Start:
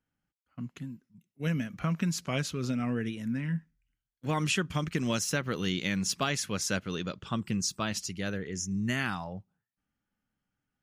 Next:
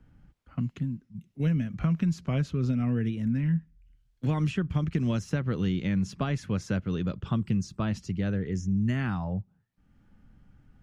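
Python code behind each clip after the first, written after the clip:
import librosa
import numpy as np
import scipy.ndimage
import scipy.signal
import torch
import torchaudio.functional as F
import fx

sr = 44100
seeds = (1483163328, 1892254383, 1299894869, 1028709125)

y = fx.riaa(x, sr, side='playback')
y = fx.band_squash(y, sr, depth_pct=70)
y = F.gain(torch.from_numpy(y), -4.0).numpy()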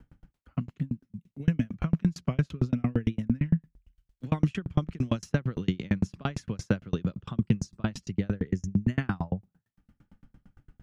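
y = fx.tremolo_decay(x, sr, direction='decaying', hz=8.8, depth_db=37)
y = F.gain(torch.from_numpy(y), 8.5).numpy()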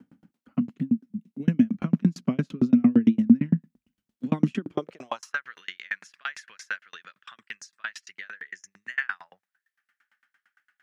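y = fx.filter_sweep_highpass(x, sr, from_hz=230.0, to_hz=1700.0, start_s=4.54, end_s=5.45, q=4.2)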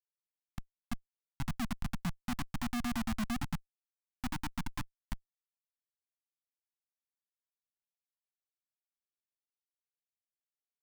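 y = fx.filter_sweep_bandpass(x, sr, from_hz=1700.0, to_hz=340.0, start_s=0.36, end_s=1.5, q=3.0)
y = fx.schmitt(y, sr, flips_db=-34.5)
y = scipy.signal.sosfilt(scipy.signal.cheby1(2, 1.0, [220.0, 880.0], 'bandstop', fs=sr, output='sos'), y)
y = F.gain(torch.from_numpy(y), 4.5).numpy()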